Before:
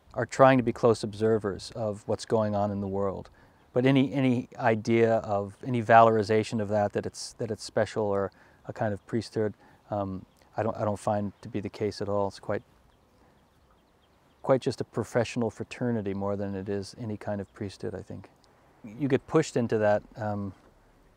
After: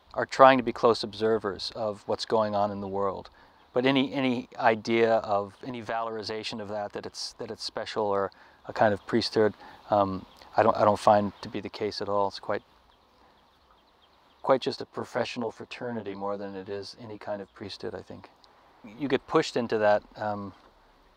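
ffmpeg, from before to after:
-filter_complex "[0:a]asettb=1/sr,asplit=3[s0][s1][s2];[s0]atrim=end=5.704[s3];[s1]atrim=start=5.7:end=7.97,asetpts=PTS-STARTPTS,afade=t=in:d=0.004:c=qsin,afade=t=out:st=2.266:d=0.004:c=qsin,acompressor=threshold=0.0398:ratio=16:attack=3.2:release=140:knee=1:detection=peak[s4];[s2]atrim=start=7.966[s5];[s3][s4]acrossfade=d=0.004:c1=hsin:c2=qsin[s6];[s6][s5]acrossfade=d=0.004:c1=qsin:c2=hsin,asettb=1/sr,asplit=3[s7][s8][s9];[s7]atrim=end=8.714[s10];[s8]atrim=start=8.71:end=11.55,asetpts=PTS-STARTPTS,afade=t=in:d=0.004:c=qsin,afade=t=out:st=2.836:d=0.004:c=qsin,acontrast=58[s11];[s9]atrim=start=11.546[s12];[s10][s11]acrossfade=d=0.004:c1=hsin:c2=qsin[s13];[s13][s12]acrossfade=d=0.004:c1=qsin:c2=hsin,asplit=3[s14][s15][s16];[s14]afade=t=out:st=14.69:d=0.02[s17];[s15]flanger=delay=16:depth=2.1:speed=1.1,afade=t=in:st=14.69:d=0.02,afade=t=out:st=17.64:d=0.02[s18];[s16]afade=t=in:st=17.64:d=0.02[s19];[s17][s18][s19]amix=inputs=3:normalize=0,equalizer=f=125:t=o:w=1:g=-9,equalizer=f=1000:t=o:w=1:g=7,equalizer=f=4000:t=o:w=1:g=12,equalizer=f=8000:t=o:w=1:g=-7,volume=0.891"

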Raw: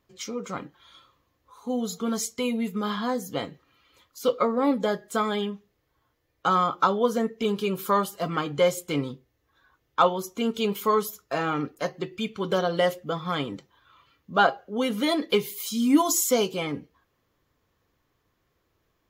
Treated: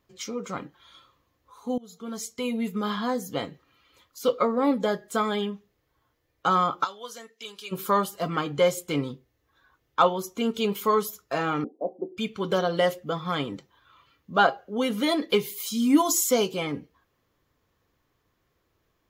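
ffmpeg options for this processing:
-filter_complex "[0:a]asplit=3[s0][s1][s2];[s0]afade=t=out:st=6.83:d=0.02[s3];[s1]bandpass=f=6500:t=q:w=0.6,afade=t=in:st=6.83:d=0.02,afade=t=out:st=7.71:d=0.02[s4];[s2]afade=t=in:st=7.71:d=0.02[s5];[s3][s4][s5]amix=inputs=3:normalize=0,asettb=1/sr,asplit=3[s6][s7][s8];[s6]atrim=end=11.644[s9];[s7]atrim=start=11.64:end=12.17,asetpts=PTS-STARTPTS,afade=t=in:d=0.004:c=qsin,afade=t=out:st=0.526:d=0.004:c=qsin,asuperpass=centerf=410:order=12:qfactor=0.65[s10];[s8]atrim=start=12.166[s11];[s9][s10]acrossfade=d=0.004:c1=hsin:c2=qsin[s12];[s12][s11]acrossfade=d=0.004:c1=qsin:c2=hsin,asplit=2[s13][s14];[s13]atrim=end=1.78,asetpts=PTS-STARTPTS,afade=t=out:st=1.776:d=0.004:c=hsin:silence=0.0630957[s15];[s14]atrim=start=1.78,asetpts=PTS-STARTPTS,afade=t=in:d=0.89:silence=0.0630957[s16];[s15][s16]concat=n=2:v=0:a=1"

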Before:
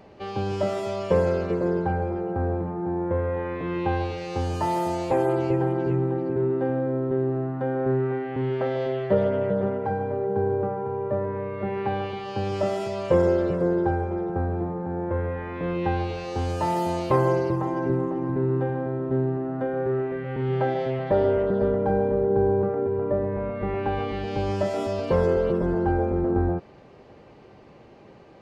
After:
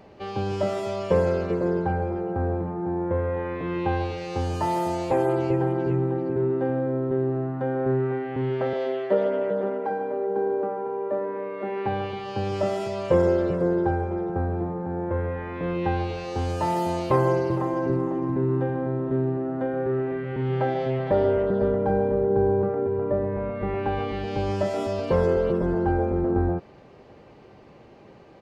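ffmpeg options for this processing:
-filter_complex "[0:a]asettb=1/sr,asplit=3[s0][s1][s2];[s0]atrim=end=8.734[s3];[s1]atrim=start=8.73:end=11.86,asetpts=PTS-STARTPTS,afade=t=in:d=0.004:c=qsin,afade=t=out:st=3.126:d=0.004:c=qsin,highpass=f=230:w=0.5412,highpass=f=230:w=1.3066[s4];[s2]atrim=start=11.856[s5];[s3][s4]acrossfade=d=0.004:c1=hsin:c2=qsin[s6];[s6][s5]acrossfade=d=0.004:c1=qsin:c2=hsin,asplit=3[s7][s8][s9];[s7]afade=t=out:st=17.49:d=0.02[s10];[s8]aecho=1:1:461:0.224,afade=t=in:st=17.49:d=0.02,afade=t=out:st=21.21:d=0.02[s11];[s9]afade=t=in:st=21.21:d=0.02[s12];[s10][s11][s12]amix=inputs=3:normalize=0"

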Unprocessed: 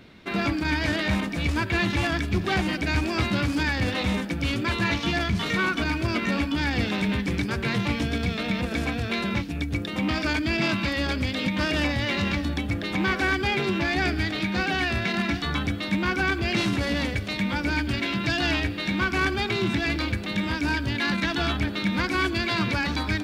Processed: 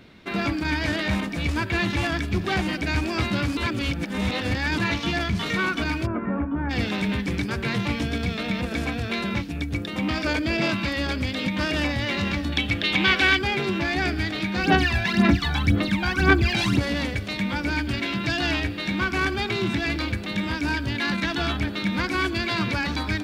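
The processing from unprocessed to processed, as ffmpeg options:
-filter_complex "[0:a]asplit=3[s0][s1][s2];[s0]afade=t=out:st=6.05:d=0.02[s3];[s1]lowpass=f=1400:w=0.5412,lowpass=f=1400:w=1.3066,afade=t=in:st=6.05:d=0.02,afade=t=out:st=6.69:d=0.02[s4];[s2]afade=t=in:st=6.69:d=0.02[s5];[s3][s4][s5]amix=inputs=3:normalize=0,asettb=1/sr,asplit=3[s6][s7][s8];[s6]atrim=end=10.264[s9];[s7]atrim=start=10.26:end=10.7,asetpts=PTS-STARTPTS,afade=t=in:d=0.004:c=qsin,afade=t=out:st=0.436:d=0.004:c=qsin,equalizer=f=520:t=o:w=0.38:g=12.5[s10];[s8]atrim=start=10.696[s11];[s9][s10]acrossfade=d=0.004:c1=hsin:c2=qsin[s12];[s12][s11]acrossfade=d=0.004:c1=qsin:c2=hsin,asettb=1/sr,asplit=3[s13][s14][s15];[s13]atrim=end=12.524[s16];[s14]atrim=start=12.52:end=13.39,asetpts=PTS-STARTPTS,afade=t=in:d=0.004:c=qsin,afade=t=out:st=0.866:d=0.004:c=qsin,equalizer=f=3100:t=o:w=1.3:g=13[s17];[s15]atrim=start=13.386[s18];[s16][s17]acrossfade=d=0.004:c1=hsin:c2=qsin[s19];[s19][s18]acrossfade=d=0.004:c1=qsin:c2=hsin,asplit=3[s20][s21][s22];[s20]afade=t=out:st=14.62:d=0.02[s23];[s21]aphaser=in_gain=1:out_gain=1:delay=1.3:decay=0.71:speed=1.9:type=sinusoidal,afade=t=in:st=14.62:d=0.02,afade=t=out:st=16.78:d=0.02[s24];[s22]afade=t=in:st=16.78:d=0.02[s25];[s23][s24][s25]amix=inputs=3:normalize=0,asplit=3[s26][s27][s28];[s26]atrim=end=3.572[s29];[s27]atrim=start=3.568:end=4.782,asetpts=PTS-STARTPTS,areverse[s30];[s28]atrim=start=4.778[s31];[s29][s30]acrossfade=d=0.004:c1=hsin:c2=hsin[s32];[s32][s31]acrossfade=d=0.004:c1=hsin:c2=hsin"

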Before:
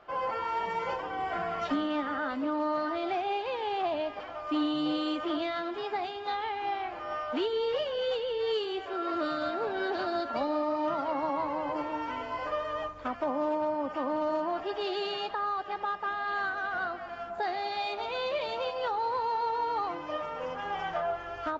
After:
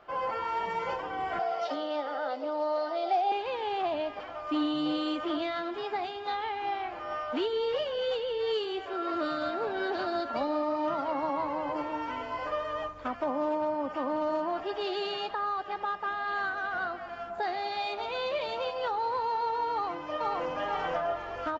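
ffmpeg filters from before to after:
-filter_complex "[0:a]asettb=1/sr,asplit=3[s0][s1][s2];[s0]atrim=end=1.394[s3];[s1]atrim=start=1.39:end=3.32,asetpts=PTS-STARTPTS,afade=t=in:d=0.004:c=qsin,afade=t=out:st=1.926:d=0.004:c=qsin,highpass=500,equalizer=f=520:t=q:w=4:g=9,equalizer=f=770:t=q:w=4:g=8,equalizer=f=1100:t=q:w=4:g=-9,equalizer=f=1700:t=q:w=4:g=-8,equalizer=f=2500:t=q:w=4:g=-5,equalizer=f=5000:t=q:w=4:g=7,lowpass=f=6500:w=0.5412,lowpass=f=6500:w=1.3066[s4];[s2]atrim=start=3.316[s5];[s3][s4]acrossfade=d=0.004:c1=hsin:c2=qsin[s6];[s6][s5]acrossfade=d=0.004:c1=qsin:c2=hsin,asplit=2[s7][s8];[s8]afade=t=in:st=19.72:d=0.01,afade=t=out:st=20.48:d=0.01,aecho=0:1:480|960|1440|1920|2400|2880:0.944061|0.424827|0.191172|0.0860275|0.0387124|0.0174206[s9];[s7][s9]amix=inputs=2:normalize=0"

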